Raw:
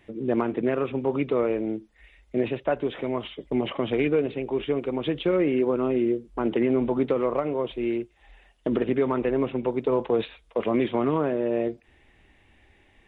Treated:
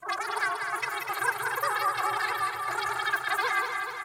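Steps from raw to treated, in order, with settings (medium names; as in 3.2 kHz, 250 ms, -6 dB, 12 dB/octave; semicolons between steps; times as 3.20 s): frequency axis rescaled in octaves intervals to 109%; treble shelf 3.4 kHz +7 dB; comb 6 ms, depth 38%; shuffle delay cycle 793 ms, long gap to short 3:1, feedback 61%, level -6.5 dB; wide varispeed 3.23×; trim -4 dB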